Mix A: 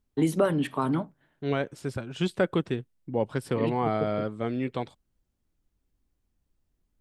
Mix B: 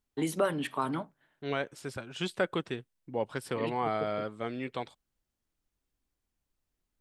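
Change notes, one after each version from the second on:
master: add low-shelf EQ 460 Hz −10.5 dB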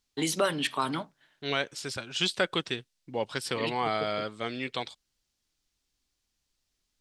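master: add parametric band 4,800 Hz +14.5 dB 2.1 octaves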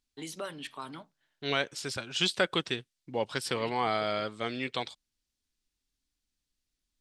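first voice −12.0 dB

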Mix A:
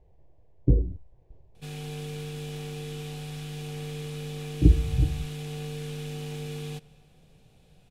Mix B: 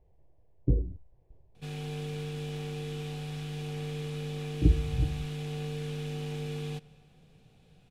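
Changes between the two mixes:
speech −5.0 dB
master: add high-shelf EQ 6,500 Hz −9 dB

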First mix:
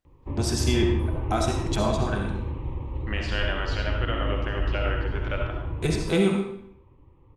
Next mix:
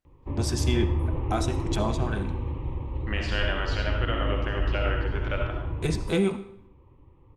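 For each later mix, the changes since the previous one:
first voice: send −11.5 dB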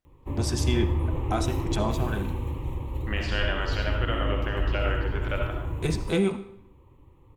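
background: remove high-frequency loss of the air 240 metres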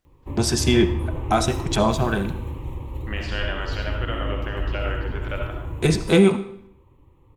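first voice +9.0 dB

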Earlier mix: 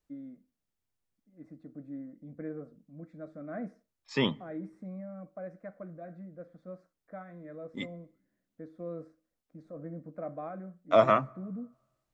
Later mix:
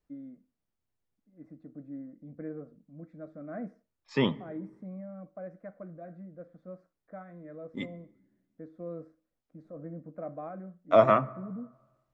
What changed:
second voice: send +9.5 dB
master: add high-shelf EQ 2,900 Hz −9 dB

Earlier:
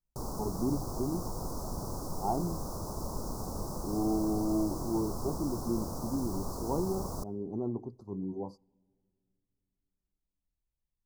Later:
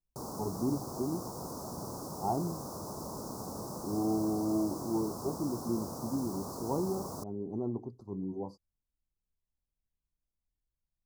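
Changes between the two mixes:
background: add high-pass filter 130 Hz 12 dB per octave
reverb: off

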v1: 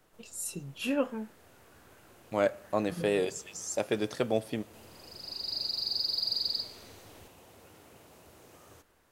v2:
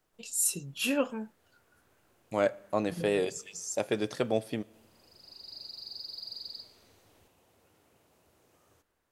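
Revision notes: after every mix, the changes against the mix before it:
first voice: add high-shelf EQ 2,900 Hz +10.5 dB
background −11.0 dB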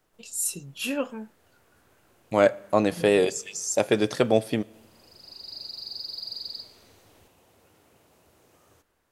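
second voice +8.0 dB
background +6.0 dB

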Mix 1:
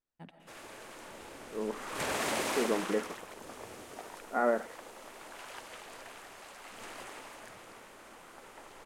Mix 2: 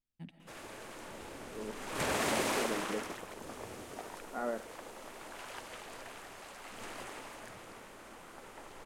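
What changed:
first voice: add flat-topped bell 790 Hz −10.5 dB 2.3 octaves
second voice −9.5 dB
master: add low-shelf EQ 270 Hz +5.5 dB

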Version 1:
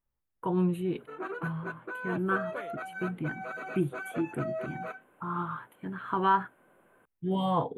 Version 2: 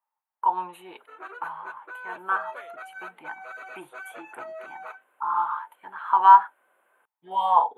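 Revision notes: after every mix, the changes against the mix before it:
speech: add high-pass with resonance 890 Hz, resonance Q 6.9
background: add high-pass filter 730 Hz 12 dB per octave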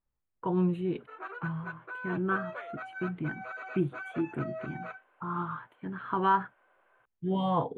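speech: remove high-pass with resonance 890 Hz, resonance Q 6.9
master: add high-frequency loss of the air 120 metres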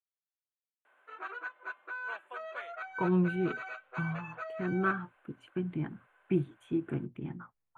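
speech: entry +2.55 s
background: add tilt shelving filter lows −5 dB, about 1,200 Hz

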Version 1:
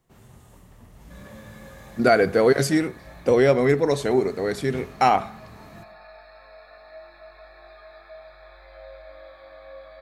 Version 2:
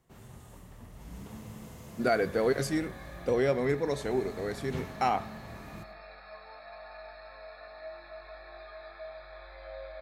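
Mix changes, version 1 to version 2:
speech −9.5 dB
second sound: entry +0.90 s

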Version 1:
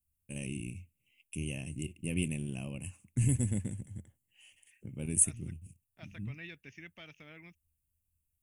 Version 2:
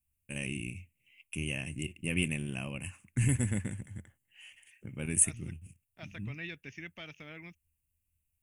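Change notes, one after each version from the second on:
first voice: add parametric band 1,600 Hz +14 dB 1.6 octaves
second voice +5.0 dB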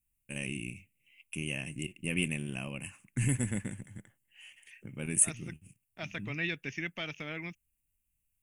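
second voice +8.0 dB
master: add parametric band 83 Hz −14.5 dB 0.42 octaves

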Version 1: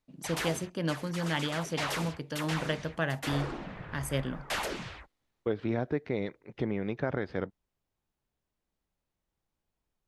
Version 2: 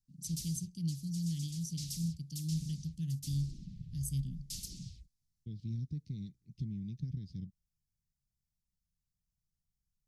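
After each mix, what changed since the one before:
master: add elliptic band-stop filter 170–5,100 Hz, stop band 80 dB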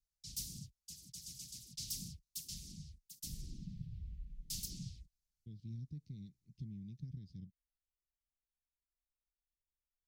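first voice: muted
second voice −7.5 dB
background: remove linear-phase brick-wall low-pass 13,000 Hz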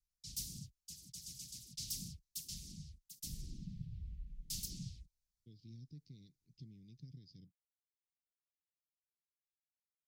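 speech: add loudspeaker in its box 170–7,400 Hz, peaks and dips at 200 Hz −10 dB, 1,500 Hz −7 dB, 4,900 Hz +10 dB

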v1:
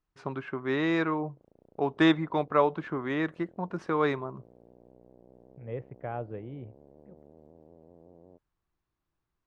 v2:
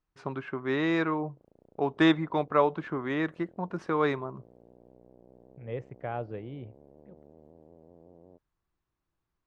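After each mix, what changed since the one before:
second voice: remove high-frequency loss of the air 350 metres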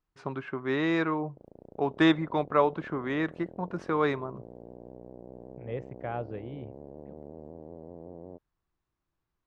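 background +10.0 dB

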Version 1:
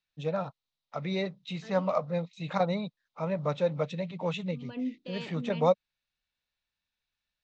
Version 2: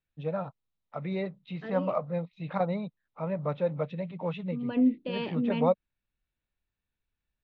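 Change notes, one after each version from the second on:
second voice +10.5 dB
master: add high-frequency loss of the air 380 metres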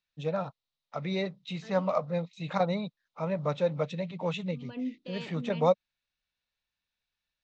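second voice −11.5 dB
master: remove high-frequency loss of the air 380 metres

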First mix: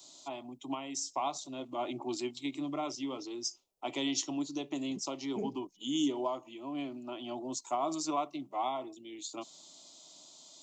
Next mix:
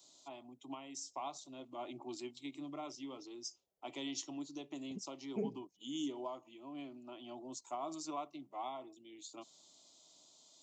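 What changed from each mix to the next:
first voice −9.0 dB
master: add high-pass filter 54 Hz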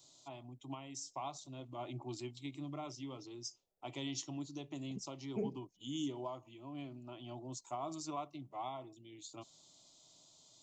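first voice: remove high-pass filter 200 Hz 24 dB per octave
master: remove high-pass filter 54 Hz

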